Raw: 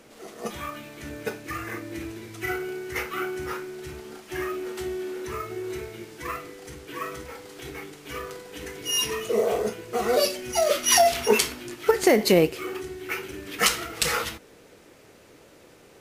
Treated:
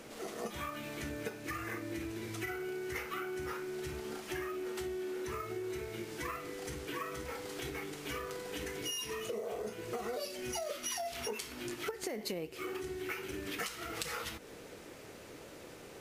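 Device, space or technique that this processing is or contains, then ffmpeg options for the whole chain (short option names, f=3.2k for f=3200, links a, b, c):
serial compression, leveller first: -af "acompressor=threshold=-27dB:ratio=2.5,acompressor=threshold=-39dB:ratio=5,volume=1.5dB"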